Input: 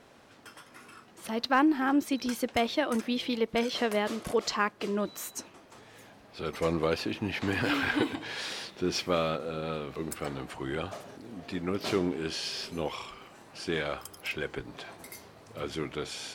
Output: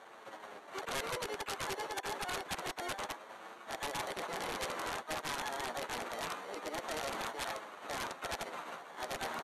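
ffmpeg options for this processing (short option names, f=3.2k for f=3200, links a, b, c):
-filter_complex "[0:a]acrusher=samples=30:mix=1:aa=0.000001,highpass=130,equalizer=f=580:w=0.51:g=10,areverse,acompressor=threshold=-30dB:ratio=10,areverse,flanger=delay=15.5:depth=7.1:speed=0.16,asplit=4[a][b][c][d];[b]asetrate=33038,aresample=44100,atempo=1.33484,volume=-13dB[e];[c]asetrate=55563,aresample=44100,atempo=0.793701,volume=-10dB[f];[d]asetrate=88200,aresample=44100,atempo=0.5,volume=-8dB[g];[a][e][f][g]amix=inputs=4:normalize=0,bandreject=f=289.3:t=h:w=4,bandreject=f=578.6:t=h:w=4,bandreject=f=867.9:t=h:w=4,bandreject=f=1.1572k:t=h:w=4,bandreject=f=1.4465k:t=h:w=4,bandreject=f=1.7358k:t=h:w=4,bandreject=f=2.0251k:t=h:w=4,bandreject=f=2.3144k:t=h:w=4,bandreject=f=2.6037k:t=h:w=4,bandreject=f=2.893k:t=h:w=4,bandreject=f=3.1823k:t=h:w=4,bandreject=f=3.4716k:t=h:w=4,bandreject=f=3.7609k:t=h:w=4,bandreject=f=4.0502k:t=h:w=4,bandreject=f=4.3395k:t=h:w=4,bandreject=f=4.6288k:t=h:w=4,bandreject=f=4.9181k:t=h:w=4,bandreject=f=5.2074k:t=h:w=4,bandreject=f=5.4967k:t=h:w=4,bandreject=f=5.786k:t=h:w=4,bandreject=f=6.0753k:t=h:w=4,bandreject=f=6.3646k:t=h:w=4,bandreject=f=6.6539k:t=h:w=4,bandreject=f=6.9432k:t=h:w=4,bandreject=f=7.2325k:t=h:w=4,bandreject=f=7.5218k:t=h:w=4,bandreject=f=7.8111k:t=h:w=4,bandreject=f=8.1004k:t=h:w=4,bandreject=f=8.3897k:t=h:w=4,aeval=exprs='(mod(25.1*val(0)+1,2)-1)/25.1':c=same,aresample=16000,aresample=44100,asetrate=76440,aresample=44100,volume=-2.5dB"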